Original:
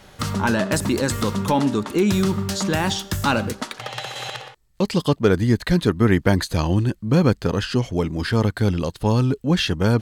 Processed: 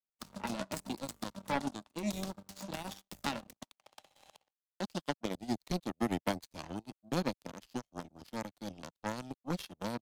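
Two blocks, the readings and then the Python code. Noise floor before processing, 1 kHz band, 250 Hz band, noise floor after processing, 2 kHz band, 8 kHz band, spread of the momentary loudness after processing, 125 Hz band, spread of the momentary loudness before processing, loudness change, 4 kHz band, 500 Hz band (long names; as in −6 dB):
−55 dBFS, −14.5 dB, −18.5 dB, below −85 dBFS, −18.0 dB, −16.5 dB, 11 LU, −24.5 dB, 10 LU, −18.5 dB, −17.5 dB, −19.0 dB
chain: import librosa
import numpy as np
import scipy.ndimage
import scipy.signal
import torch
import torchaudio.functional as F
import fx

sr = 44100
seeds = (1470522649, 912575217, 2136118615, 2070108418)

y = fx.fixed_phaser(x, sr, hz=420.0, stages=6)
y = fx.power_curve(y, sr, exponent=3.0)
y = fx.band_squash(y, sr, depth_pct=40)
y = F.gain(torch.from_numpy(y), -2.5).numpy()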